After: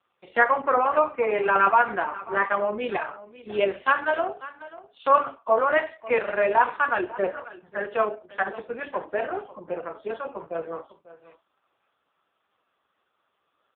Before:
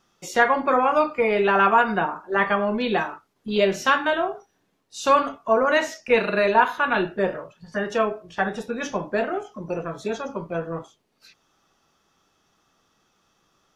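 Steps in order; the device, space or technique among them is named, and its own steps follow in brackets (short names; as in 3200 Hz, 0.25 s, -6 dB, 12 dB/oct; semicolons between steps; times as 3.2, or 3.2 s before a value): satellite phone (BPF 390–3100 Hz; echo 0.545 s -17.5 dB; AMR-NB 4.75 kbps 8000 Hz)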